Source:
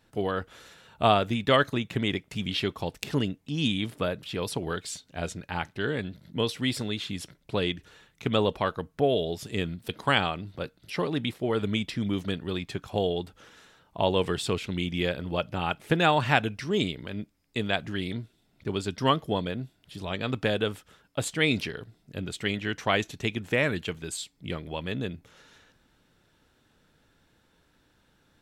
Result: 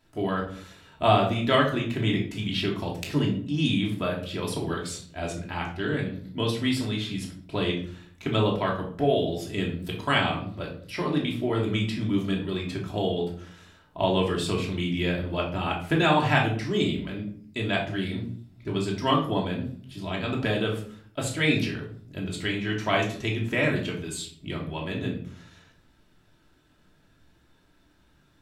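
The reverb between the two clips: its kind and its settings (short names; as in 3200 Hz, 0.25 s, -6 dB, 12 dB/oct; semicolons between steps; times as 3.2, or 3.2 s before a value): shoebox room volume 610 m³, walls furnished, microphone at 2.9 m; gain -3 dB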